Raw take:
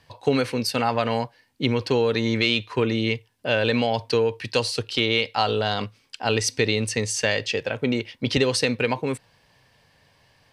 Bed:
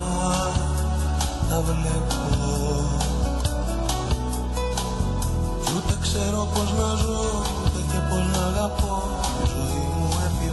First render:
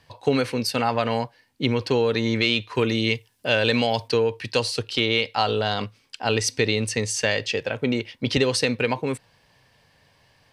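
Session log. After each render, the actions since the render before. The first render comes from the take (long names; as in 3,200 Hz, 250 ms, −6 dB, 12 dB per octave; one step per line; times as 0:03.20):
0:02.75–0:04.08: high-shelf EQ 4,000 Hz +9.5 dB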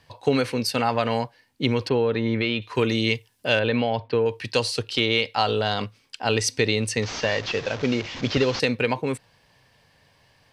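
0:01.89–0:02.62: high-frequency loss of the air 310 metres
0:03.59–0:04.26: high-frequency loss of the air 380 metres
0:07.02–0:08.60: linear delta modulator 32 kbit/s, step −29 dBFS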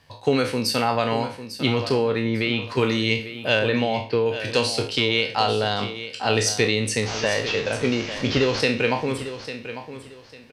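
peak hold with a decay on every bin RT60 0.39 s
repeating echo 849 ms, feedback 25%, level −12 dB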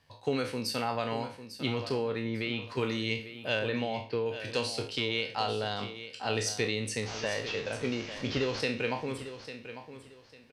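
level −10 dB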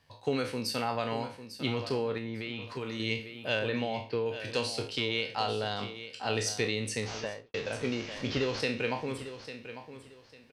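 0:02.17–0:03.00: downward compressor, threshold −32 dBFS
0:07.12–0:07.54: fade out and dull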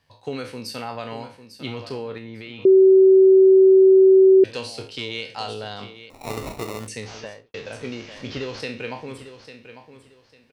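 0:02.65–0:04.44: beep over 381 Hz −8.5 dBFS
0:04.99–0:05.54: parametric band 7,900 Hz +8.5 dB 1.1 octaves
0:06.10–0:06.88: sample-rate reduction 1,600 Hz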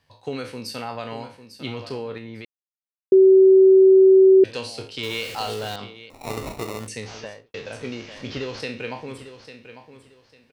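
0:02.45–0:03.12: silence
0:05.03–0:05.76: converter with a step at zero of −32 dBFS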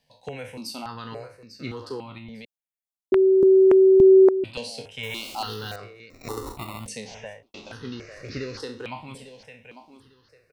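step-sequenced phaser 3.5 Hz 340–3,200 Hz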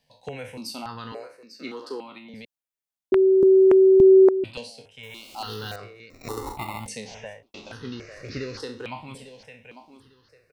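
0:01.12–0:02.34: high-pass filter 230 Hz 24 dB per octave
0:04.47–0:05.56: duck −9 dB, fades 0.28 s
0:06.39–0:06.95: hollow resonant body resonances 850/2,100 Hz, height 13 dB, ringing for 35 ms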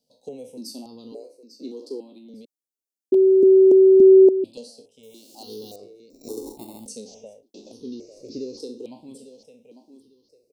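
Chebyshev band-stop filter 450–5,500 Hz, order 2
low shelf with overshoot 170 Hz −13.5 dB, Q 1.5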